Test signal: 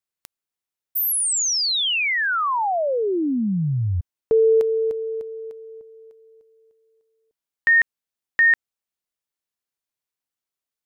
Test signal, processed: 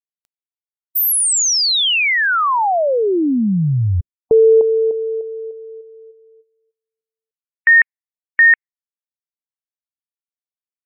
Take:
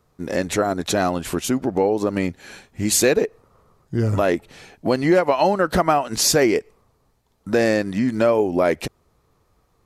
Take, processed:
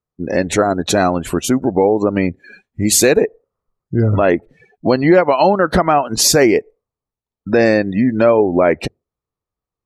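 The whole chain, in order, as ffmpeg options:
-af "afftdn=nr=30:nf=-35,alimiter=level_in=7dB:limit=-1dB:release=50:level=0:latency=1,volume=-1dB"

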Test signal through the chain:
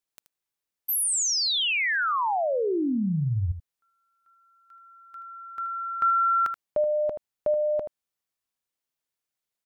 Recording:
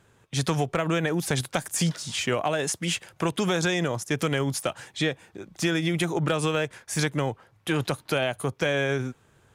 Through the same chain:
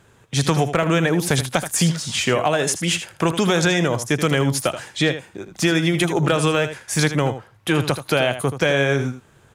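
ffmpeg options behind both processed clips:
-af "aecho=1:1:79:0.282,volume=6.5dB"

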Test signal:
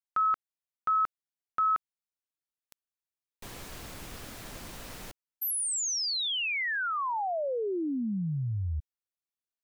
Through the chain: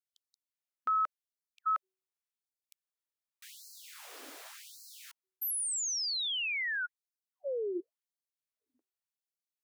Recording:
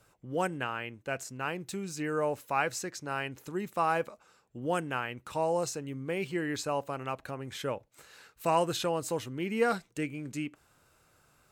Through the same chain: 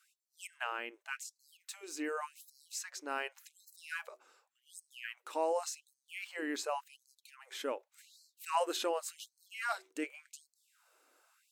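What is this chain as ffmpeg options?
-af "bandreject=f=188.9:t=h:w=4,bandreject=f=377.8:t=h:w=4,afftfilt=real='re*gte(b*sr/1024,240*pow(4100/240,0.5+0.5*sin(2*PI*0.88*pts/sr)))':imag='im*gte(b*sr/1024,240*pow(4100/240,0.5+0.5*sin(2*PI*0.88*pts/sr)))':win_size=1024:overlap=0.75,volume=-3dB"

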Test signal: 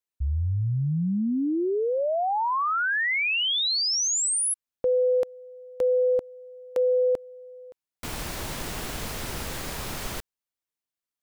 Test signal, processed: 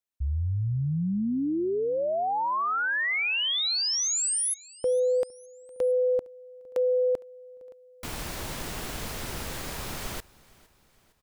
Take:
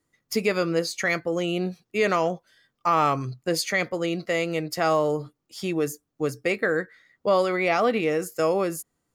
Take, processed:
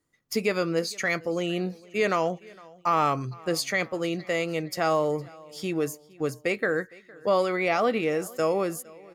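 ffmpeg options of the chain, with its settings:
-af "aecho=1:1:460|920|1380:0.0668|0.0341|0.0174,volume=-2dB"

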